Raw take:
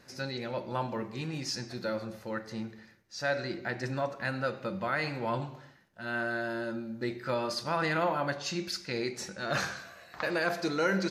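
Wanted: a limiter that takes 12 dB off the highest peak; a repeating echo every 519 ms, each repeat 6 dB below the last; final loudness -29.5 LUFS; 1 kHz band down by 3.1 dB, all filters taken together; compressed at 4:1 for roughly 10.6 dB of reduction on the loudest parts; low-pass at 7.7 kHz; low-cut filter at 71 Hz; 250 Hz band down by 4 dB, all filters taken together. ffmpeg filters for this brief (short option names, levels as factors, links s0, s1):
-af "highpass=71,lowpass=7700,equalizer=f=250:t=o:g=-5.5,equalizer=f=1000:t=o:g=-4,acompressor=threshold=0.0112:ratio=4,alimiter=level_in=3.98:limit=0.0631:level=0:latency=1,volume=0.251,aecho=1:1:519|1038|1557|2076|2595|3114:0.501|0.251|0.125|0.0626|0.0313|0.0157,volume=5.96"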